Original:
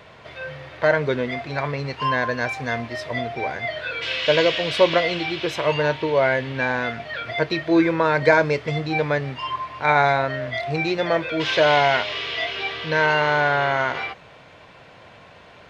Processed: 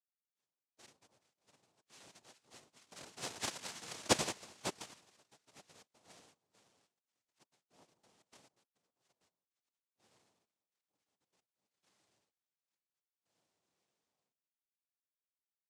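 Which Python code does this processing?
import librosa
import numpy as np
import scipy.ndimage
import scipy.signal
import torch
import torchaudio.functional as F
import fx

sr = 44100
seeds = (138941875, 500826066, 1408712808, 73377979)

y = fx.doppler_pass(x, sr, speed_mps=21, closest_m=5.7, pass_at_s=3.52)
y = fx.cheby_harmonics(y, sr, harmonics=(3, 4, 5), levels_db=(-9, -20, -38), full_scale_db=-13.0)
y = fx.noise_vocoder(y, sr, seeds[0], bands=2)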